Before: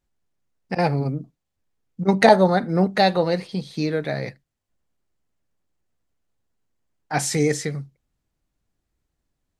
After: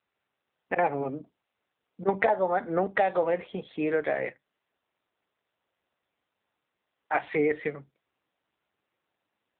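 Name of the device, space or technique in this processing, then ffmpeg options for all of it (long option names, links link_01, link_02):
voicemail: -af "highpass=430,lowpass=2800,acompressor=threshold=-23dB:ratio=6,volume=3dB" -ar 8000 -c:a libopencore_amrnb -b:a 7400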